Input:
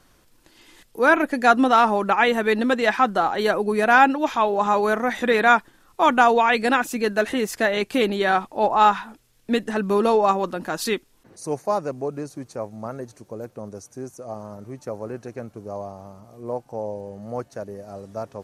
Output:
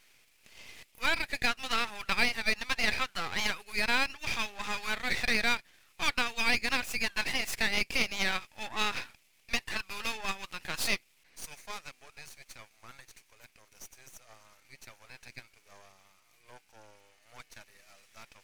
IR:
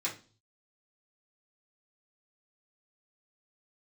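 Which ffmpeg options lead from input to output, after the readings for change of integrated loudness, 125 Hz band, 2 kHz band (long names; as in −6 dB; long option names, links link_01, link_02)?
−10.5 dB, −13.0 dB, −7.0 dB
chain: -af "highpass=frequency=2300:width_type=q:width=4.2,aeval=exprs='max(val(0),0)':channel_layout=same,acompressor=threshold=-25dB:ratio=2.5"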